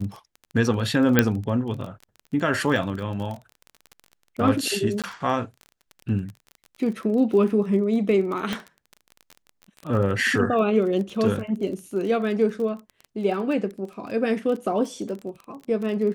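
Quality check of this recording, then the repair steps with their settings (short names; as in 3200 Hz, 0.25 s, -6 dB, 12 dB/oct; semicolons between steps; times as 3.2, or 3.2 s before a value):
crackle 23/s -31 dBFS
1.19 pop -2 dBFS
5.02–5.04 gap 17 ms
8.53 pop -13 dBFS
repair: de-click; interpolate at 5.02, 17 ms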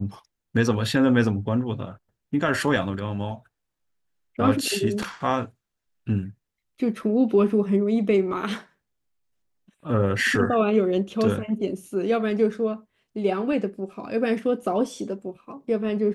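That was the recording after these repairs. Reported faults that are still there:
8.53 pop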